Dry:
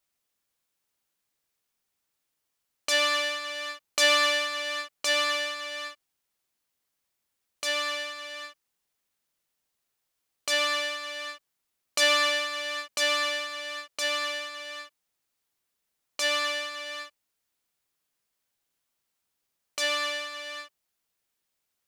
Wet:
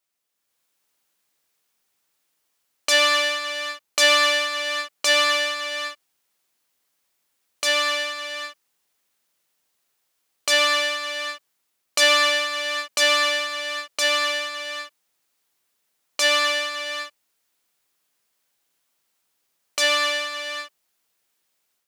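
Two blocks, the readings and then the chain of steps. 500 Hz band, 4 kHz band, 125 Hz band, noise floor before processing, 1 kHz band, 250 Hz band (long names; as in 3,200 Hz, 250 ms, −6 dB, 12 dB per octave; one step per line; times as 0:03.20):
+6.0 dB, +6.5 dB, can't be measured, −81 dBFS, +6.5 dB, +4.5 dB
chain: automatic gain control gain up to 8 dB
low-shelf EQ 130 Hz −11 dB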